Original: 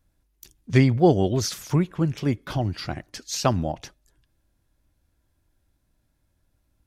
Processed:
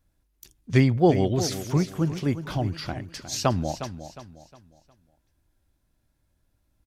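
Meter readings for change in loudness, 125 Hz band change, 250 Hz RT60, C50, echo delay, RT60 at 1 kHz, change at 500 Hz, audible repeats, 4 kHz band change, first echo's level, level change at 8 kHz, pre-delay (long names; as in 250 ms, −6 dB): −1.5 dB, −1.5 dB, no reverb audible, no reverb audible, 359 ms, no reverb audible, −1.0 dB, 3, −1.0 dB, −11.5 dB, −1.0 dB, no reverb audible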